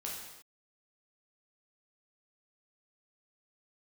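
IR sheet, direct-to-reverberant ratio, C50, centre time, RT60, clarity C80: -4.0 dB, 1.5 dB, 60 ms, not exponential, 4.5 dB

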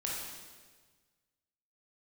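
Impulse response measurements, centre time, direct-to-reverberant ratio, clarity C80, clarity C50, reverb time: 86 ms, -4.5 dB, 2.0 dB, -0.5 dB, 1.5 s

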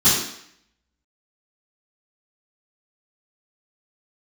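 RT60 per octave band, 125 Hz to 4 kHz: 0.55, 0.70, 0.65, 0.70, 0.75, 0.70 s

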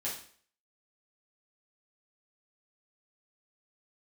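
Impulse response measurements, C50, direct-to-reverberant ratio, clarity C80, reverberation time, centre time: 5.5 dB, -7.0 dB, 10.0 dB, 0.50 s, 34 ms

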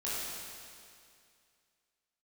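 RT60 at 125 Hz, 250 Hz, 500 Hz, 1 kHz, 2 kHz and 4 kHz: 2.3, 2.3, 2.3, 2.3, 2.3, 2.3 s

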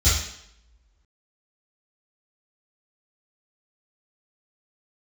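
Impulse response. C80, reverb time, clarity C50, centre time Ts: 6.0 dB, 0.75 s, 1.0 dB, 56 ms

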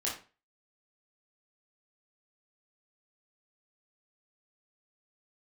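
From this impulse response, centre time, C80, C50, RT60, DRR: 33 ms, 12.0 dB, 6.0 dB, 0.35 s, -5.5 dB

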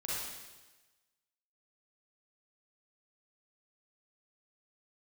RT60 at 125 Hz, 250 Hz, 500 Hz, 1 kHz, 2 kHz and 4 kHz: 1.2, 1.1, 1.2, 1.2, 1.2, 1.2 s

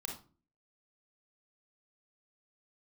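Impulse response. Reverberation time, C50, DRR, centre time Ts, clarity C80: 0.40 s, 5.0 dB, 0.5 dB, 26 ms, 12.5 dB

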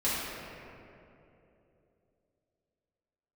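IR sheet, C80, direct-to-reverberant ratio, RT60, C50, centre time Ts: -1.0 dB, -11.0 dB, 3.0 s, -3.0 dB, 0.167 s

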